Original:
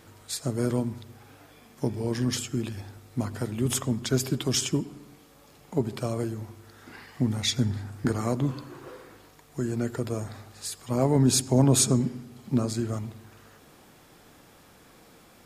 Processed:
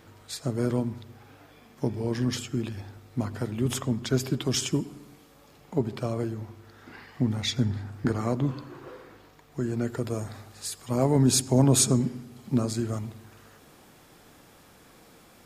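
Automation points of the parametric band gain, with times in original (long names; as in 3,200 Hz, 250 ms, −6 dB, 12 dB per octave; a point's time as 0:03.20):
parametric band 10,000 Hz 1.4 octaves
0:04.43 −7 dB
0:04.85 +2.5 dB
0:05.93 −9 dB
0:09.60 −9 dB
0:10.18 +0.5 dB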